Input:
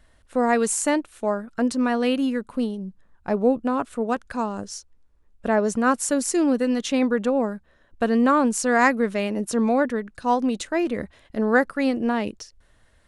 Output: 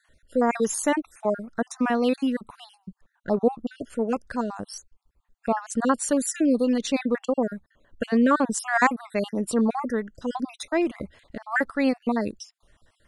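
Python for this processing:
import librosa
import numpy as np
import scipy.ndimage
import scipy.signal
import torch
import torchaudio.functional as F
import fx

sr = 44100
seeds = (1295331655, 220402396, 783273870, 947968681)

y = fx.spec_dropout(x, sr, seeds[0], share_pct=45)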